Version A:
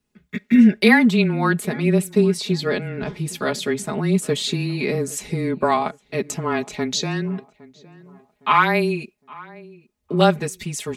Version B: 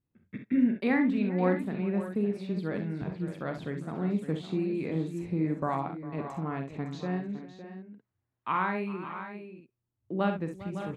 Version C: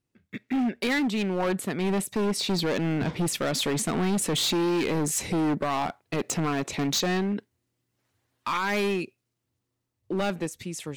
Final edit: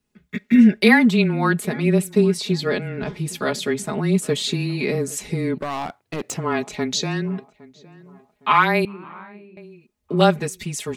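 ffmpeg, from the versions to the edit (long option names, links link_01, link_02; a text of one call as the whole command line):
ffmpeg -i take0.wav -i take1.wav -i take2.wav -filter_complex "[0:a]asplit=3[link_01][link_02][link_03];[link_01]atrim=end=5.582[link_04];[2:a]atrim=start=5.578:end=6.372[link_05];[link_02]atrim=start=6.368:end=8.852[link_06];[1:a]atrim=start=8.848:end=9.572[link_07];[link_03]atrim=start=9.568[link_08];[link_04][link_05]acrossfade=duration=0.004:curve1=hsin:curve2=hsin[link_09];[link_09][link_06]acrossfade=duration=0.004:curve1=hsin:curve2=hsin[link_10];[link_10][link_07]acrossfade=duration=0.004:curve1=hsin:curve2=hsin[link_11];[link_11][link_08]acrossfade=duration=0.004:curve1=hsin:curve2=hsin" out.wav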